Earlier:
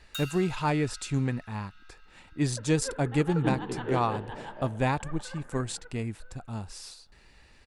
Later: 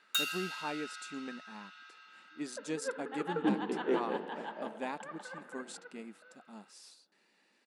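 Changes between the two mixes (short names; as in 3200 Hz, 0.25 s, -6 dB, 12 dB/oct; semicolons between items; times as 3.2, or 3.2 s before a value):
speech -11.0 dB; first sound +6.0 dB; master: add brick-wall FIR high-pass 170 Hz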